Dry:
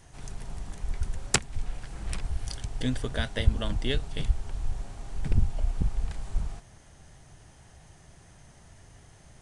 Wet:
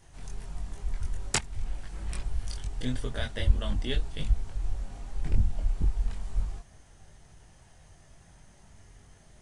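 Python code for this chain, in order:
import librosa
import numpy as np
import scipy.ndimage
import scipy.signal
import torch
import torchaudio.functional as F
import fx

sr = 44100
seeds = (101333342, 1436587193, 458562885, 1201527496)

y = fx.chorus_voices(x, sr, voices=6, hz=0.42, base_ms=22, depth_ms=2.9, mix_pct=45)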